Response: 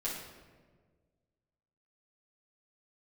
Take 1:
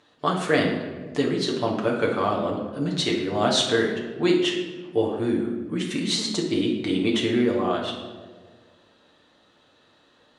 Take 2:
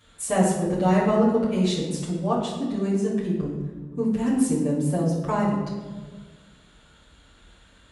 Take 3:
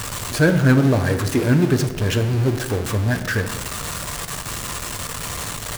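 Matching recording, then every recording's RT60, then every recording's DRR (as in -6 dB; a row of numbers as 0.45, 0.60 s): 2; 1.6, 1.6, 1.6 s; -2.5, -8.5, 6.5 dB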